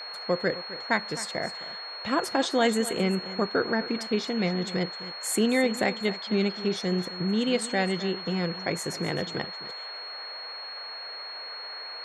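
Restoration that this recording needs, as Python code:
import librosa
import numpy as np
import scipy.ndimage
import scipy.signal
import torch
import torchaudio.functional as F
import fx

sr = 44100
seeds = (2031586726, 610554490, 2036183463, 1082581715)

y = fx.notch(x, sr, hz=4300.0, q=30.0)
y = fx.noise_reduce(y, sr, print_start_s=10.52, print_end_s=11.02, reduce_db=30.0)
y = fx.fix_echo_inverse(y, sr, delay_ms=260, level_db=-15.0)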